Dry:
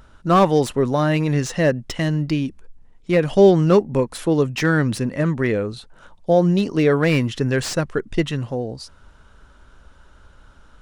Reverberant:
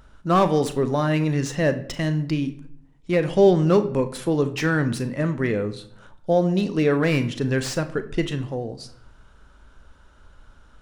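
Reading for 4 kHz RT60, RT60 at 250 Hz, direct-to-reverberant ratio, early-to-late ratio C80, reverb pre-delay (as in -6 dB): 0.45 s, 0.85 s, 10.0 dB, 17.5 dB, 34 ms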